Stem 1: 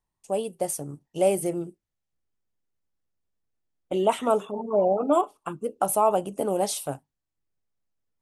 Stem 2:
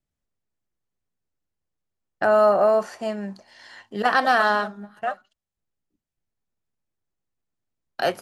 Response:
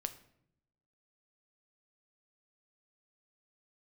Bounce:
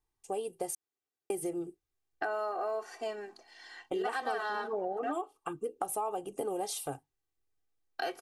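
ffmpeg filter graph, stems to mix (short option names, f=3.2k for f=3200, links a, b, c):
-filter_complex "[0:a]aecho=1:1:2.5:0.62,volume=-4dB,asplit=3[a][b][c];[a]atrim=end=0.75,asetpts=PTS-STARTPTS,afade=t=out:st=0.746:d=0.004:c=hsin[d];[b]atrim=start=0.75:end=1.3,asetpts=PTS-STARTPTS,volume=0[e];[c]atrim=start=1.3,asetpts=PTS-STARTPTS,afade=t=in:d=0.004:c=hsin[f];[d][e][f]concat=n=3:v=0:a=1[g];[1:a]highpass=220,aecho=1:1:2.6:0.99,volume=-8dB[h];[g][h]amix=inputs=2:normalize=0,acompressor=threshold=-32dB:ratio=5"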